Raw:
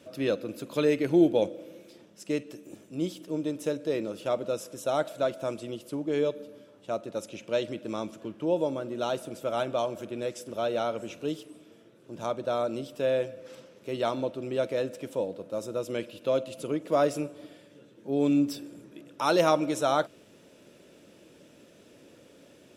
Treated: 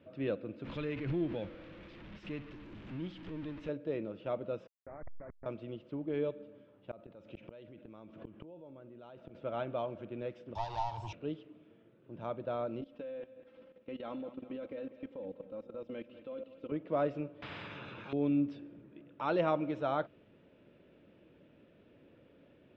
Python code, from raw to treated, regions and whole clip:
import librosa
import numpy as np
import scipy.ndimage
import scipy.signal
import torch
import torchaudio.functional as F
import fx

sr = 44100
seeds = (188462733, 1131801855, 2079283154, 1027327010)

y = fx.chain(x, sr, fx.zero_step(step_db=-34.0),
    fx.peak_eq(hz=520.0, db=-9.5, octaves=2.5),
    fx.pre_swell(db_per_s=64.0), at=(0.64, 3.69))
y = fx.chain(y, sr, fx.delta_hold(step_db=-27.5),
    fx.steep_lowpass(hz=2200.0, slope=96),
    fx.level_steps(step_db=20), at=(4.67, 5.46))
y = fx.chain(y, sr, fx.gate_flip(shuts_db=-29.0, range_db=-30),
    fx.env_flatten(amount_pct=70), at=(6.91, 9.35))
y = fx.chain(y, sr, fx.leveller(passes=3),
    fx.curve_eq(hz=(120.0, 210.0, 330.0, 530.0, 900.0, 1300.0, 2200.0, 3200.0, 5300.0), db=(0, -26, -19, -28, 12, -19, -13, -4, 15)),
    fx.band_squash(depth_pct=70), at=(10.55, 11.13))
y = fx.chain(y, sr, fx.comb(ms=3.8, depth=0.72),
    fx.level_steps(step_db=17),
    fx.echo_feedback(ms=198, feedback_pct=52, wet_db=-14.0), at=(12.81, 16.72))
y = fx.chain(y, sr, fx.highpass(hz=92.0, slope=12),
    fx.comb(ms=0.8, depth=0.52),
    fx.spectral_comp(ratio=10.0), at=(17.42, 18.13))
y = scipy.signal.sosfilt(scipy.signal.butter(4, 3000.0, 'lowpass', fs=sr, output='sos'), y)
y = fx.low_shelf(y, sr, hz=140.0, db=10.0)
y = y * 10.0 ** (-8.5 / 20.0)